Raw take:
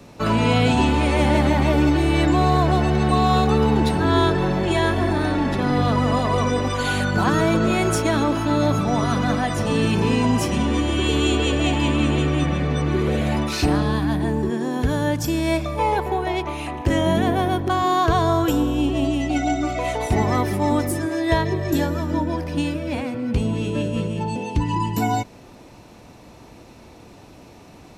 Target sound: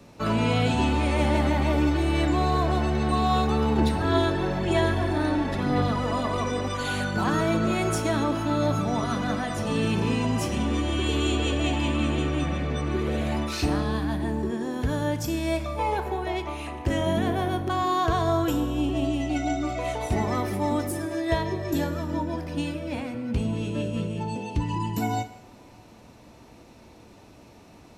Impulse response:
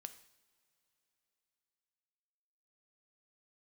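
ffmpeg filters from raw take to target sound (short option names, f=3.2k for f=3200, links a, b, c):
-filter_complex "[0:a]asettb=1/sr,asplit=3[a][b][c];[a]atrim=end=3.784[d];[b]atrim=start=3.78:end=6.51,asetpts=PTS-STARTPTS,afade=t=in:d=0.004:c=qsin,afade=t=out:st=2.726:d=0.004:c=qsin,aphaser=in_gain=1:out_gain=1:delay=3.5:decay=0.31:speed=1:type=sinusoidal[e];[c]atrim=start=6.506[f];[d][e]acrossfade=d=0.004:c1=hsin:c2=qsin[g];[g][f]acrossfade=d=0.004:c1=qsin:c2=hsin[h];[1:a]atrim=start_sample=2205[i];[h][i]afir=irnorm=-1:irlink=0"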